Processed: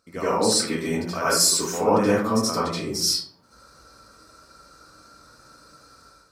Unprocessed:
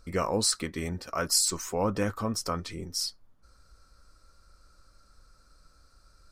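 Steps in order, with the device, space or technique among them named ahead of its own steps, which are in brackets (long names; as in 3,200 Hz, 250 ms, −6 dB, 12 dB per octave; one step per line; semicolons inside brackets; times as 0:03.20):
far laptop microphone (convolution reverb RT60 0.55 s, pre-delay 70 ms, DRR −9.5 dB; high-pass filter 180 Hz 12 dB per octave; automatic gain control gain up to 10 dB)
level −5.5 dB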